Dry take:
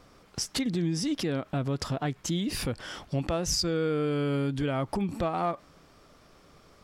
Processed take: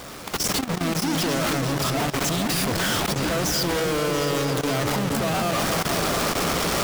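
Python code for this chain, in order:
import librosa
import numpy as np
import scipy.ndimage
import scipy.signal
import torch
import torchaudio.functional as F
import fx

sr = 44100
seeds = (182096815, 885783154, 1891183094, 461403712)

y = np.sign(x) * np.sqrt(np.mean(np.square(x)))
y = fx.echo_opening(y, sr, ms=226, hz=400, octaves=2, feedback_pct=70, wet_db=-3)
y = fx.level_steps(y, sr, step_db=15)
y = fx.low_shelf(y, sr, hz=62.0, db=-11.5)
y = y * librosa.db_to_amplitude(7.5)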